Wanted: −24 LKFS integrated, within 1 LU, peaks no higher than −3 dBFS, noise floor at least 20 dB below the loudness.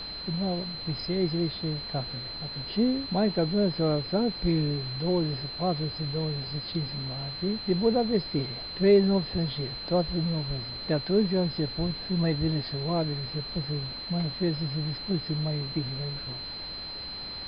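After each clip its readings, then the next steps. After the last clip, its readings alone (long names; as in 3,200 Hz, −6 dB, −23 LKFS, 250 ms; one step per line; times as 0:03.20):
interfering tone 4,100 Hz; level of the tone −36 dBFS; background noise floor −38 dBFS; target noise floor −49 dBFS; integrated loudness −28.5 LKFS; sample peak −11.0 dBFS; target loudness −24.0 LKFS
→ notch filter 4,100 Hz, Q 30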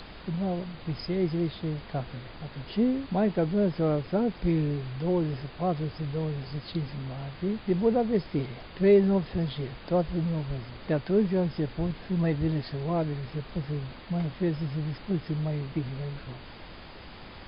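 interfering tone none found; background noise floor −46 dBFS; target noise floor −49 dBFS
→ noise reduction from a noise print 6 dB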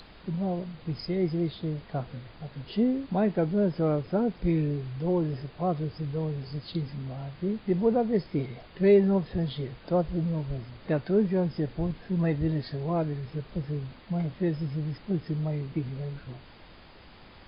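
background noise floor −51 dBFS; integrated loudness −29.0 LKFS; sample peak −11.5 dBFS; target loudness −24.0 LKFS
→ level +5 dB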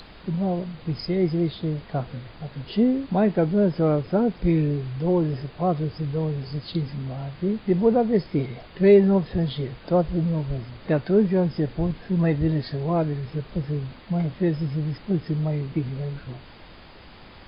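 integrated loudness −24.0 LKFS; sample peak −6.5 dBFS; background noise floor −46 dBFS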